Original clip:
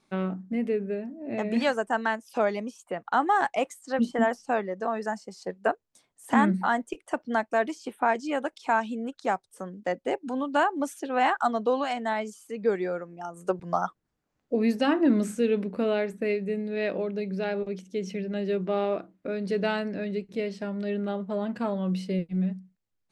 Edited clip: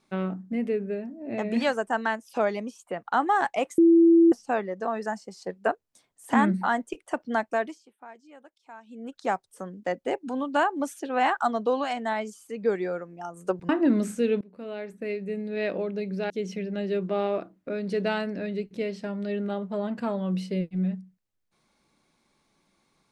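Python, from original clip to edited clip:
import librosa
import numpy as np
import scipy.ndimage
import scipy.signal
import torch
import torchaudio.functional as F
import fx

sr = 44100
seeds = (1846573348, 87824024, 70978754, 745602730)

y = fx.edit(x, sr, fx.bleep(start_s=3.78, length_s=0.54, hz=334.0, db=-13.0),
    fx.fade_down_up(start_s=7.51, length_s=1.71, db=-21.5, fade_s=0.36),
    fx.cut(start_s=13.69, length_s=1.2),
    fx.fade_in_from(start_s=15.61, length_s=1.2, floor_db=-23.5),
    fx.cut(start_s=17.5, length_s=0.38), tone=tone)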